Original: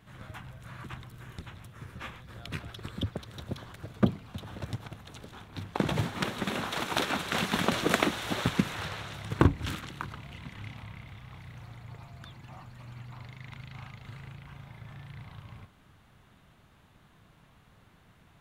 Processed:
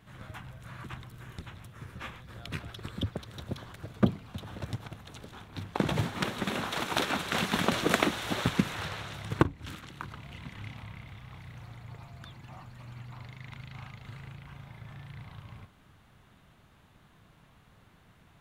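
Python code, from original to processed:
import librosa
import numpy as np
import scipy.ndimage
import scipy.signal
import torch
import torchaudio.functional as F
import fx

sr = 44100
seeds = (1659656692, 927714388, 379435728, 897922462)

y = fx.edit(x, sr, fx.fade_in_from(start_s=9.43, length_s=0.93, floor_db=-14.0), tone=tone)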